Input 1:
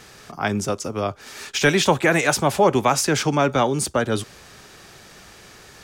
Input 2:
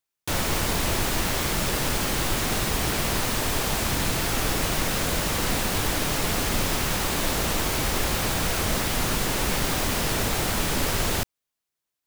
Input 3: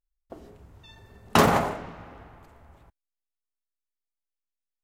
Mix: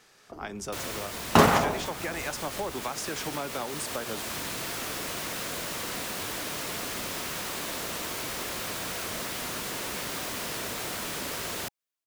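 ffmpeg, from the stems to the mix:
ffmpeg -i stem1.wav -i stem2.wav -i stem3.wav -filter_complex "[0:a]volume=-13dB[link_01];[1:a]bandreject=frequency=820:width=12,adelay=450,volume=-11dB[link_02];[2:a]acrossover=split=1100[link_03][link_04];[link_03]aeval=exprs='val(0)*(1-0.5/2+0.5/2*cos(2*PI*2.3*n/s))':channel_layout=same[link_05];[link_04]aeval=exprs='val(0)*(1-0.5/2-0.5/2*cos(2*PI*2.3*n/s))':channel_layout=same[link_06];[link_05][link_06]amix=inputs=2:normalize=0,volume=-1dB[link_07];[link_01][link_02]amix=inputs=2:normalize=0,highpass=frequency=300:poles=1,acompressor=threshold=-36dB:ratio=6,volume=0dB[link_08];[link_07][link_08]amix=inputs=2:normalize=0,dynaudnorm=framelen=110:gausssize=9:maxgain=6dB" out.wav

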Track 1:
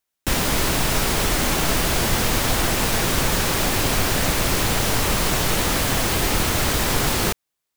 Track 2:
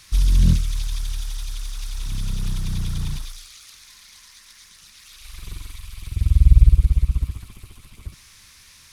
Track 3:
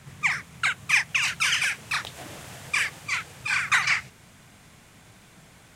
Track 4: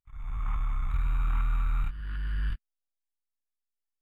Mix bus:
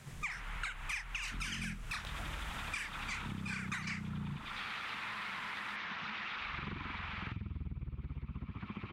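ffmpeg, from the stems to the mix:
ffmpeg -i stem1.wav -i stem2.wav -i stem3.wav -i stem4.wav -filter_complex "[0:a]highpass=1500,asoftclip=type=tanh:threshold=-21.5dB,volume=-10dB[link_01];[1:a]dynaudnorm=framelen=520:gausssize=3:maxgain=11.5dB,adelay=1200,volume=3dB[link_02];[2:a]volume=-4.5dB[link_03];[3:a]volume=-11dB[link_04];[link_01][link_02]amix=inputs=2:normalize=0,highpass=150,equalizer=frequency=210:width_type=q:width=4:gain=9,equalizer=frequency=590:width_type=q:width=4:gain=-3,equalizer=frequency=900:width_type=q:width=4:gain=4,equalizer=frequency=1300:width_type=q:width=4:gain=4,lowpass=frequency=2600:width=0.5412,lowpass=frequency=2600:width=1.3066,acompressor=threshold=-32dB:ratio=3,volume=0dB[link_05];[link_03][link_04][link_05]amix=inputs=3:normalize=0,acompressor=threshold=-38dB:ratio=6" out.wav

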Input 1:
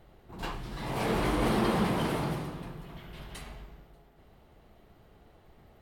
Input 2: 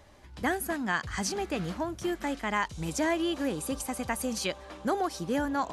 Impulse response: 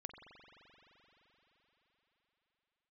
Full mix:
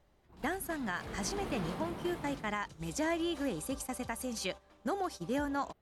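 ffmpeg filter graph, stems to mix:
-filter_complex "[0:a]volume=-15.5dB,asplit=2[link_01][link_02];[link_02]volume=-7dB[link_03];[1:a]agate=range=-14dB:threshold=-36dB:ratio=16:detection=peak,volume=-4.5dB[link_04];[2:a]atrim=start_sample=2205[link_05];[link_03][link_05]afir=irnorm=-1:irlink=0[link_06];[link_01][link_04][link_06]amix=inputs=3:normalize=0,alimiter=limit=-24dB:level=0:latency=1:release=414"

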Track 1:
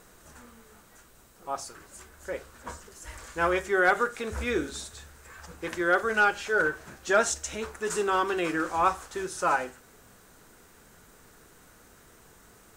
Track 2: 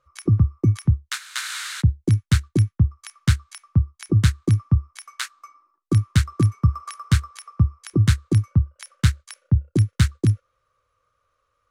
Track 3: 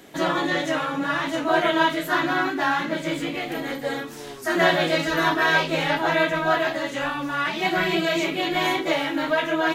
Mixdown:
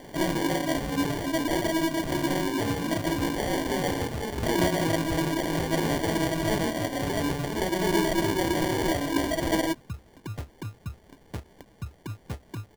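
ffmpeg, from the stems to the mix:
ffmpeg -i stem1.wav -i stem2.wav -i stem3.wav -filter_complex "[0:a]volume=-1dB[link_01];[1:a]lowshelf=frequency=420:gain=-8.5,adelay=2300,volume=-11.5dB[link_02];[2:a]equalizer=frequency=13000:width=1.2:gain=13.5,acrossover=split=420[link_03][link_04];[link_04]acompressor=threshold=-32dB:ratio=6[link_05];[link_03][link_05]amix=inputs=2:normalize=0,volume=1.5dB[link_06];[link_01][link_02]amix=inputs=2:normalize=0,alimiter=limit=-22dB:level=0:latency=1:release=26,volume=0dB[link_07];[link_06][link_07]amix=inputs=2:normalize=0,acrusher=samples=34:mix=1:aa=0.000001" out.wav

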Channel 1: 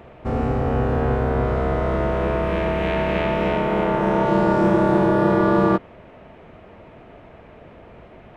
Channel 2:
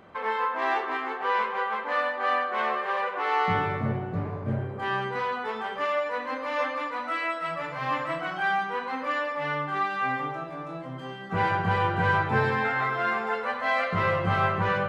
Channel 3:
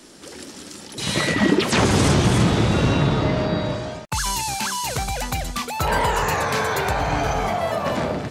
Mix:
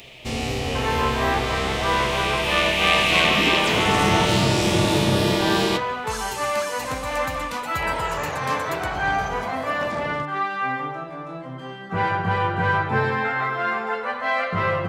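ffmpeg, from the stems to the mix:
ffmpeg -i stem1.wav -i stem2.wav -i stem3.wav -filter_complex "[0:a]flanger=delay=6.9:depth=6.5:regen=64:speed=0.44:shape=triangular,aexciter=amount=7:drive=10:freq=2300,volume=-1dB[link_01];[1:a]adelay=600,volume=2.5dB[link_02];[2:a]adelay=1950,volume=-8dB[link_03];[link_01][link_02][link_03]amix=inputs=3:normalize=0" out.wav

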